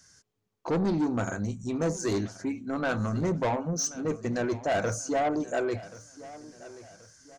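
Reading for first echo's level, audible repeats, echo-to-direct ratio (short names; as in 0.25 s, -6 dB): -18.0 dB, 3, -17.5 dB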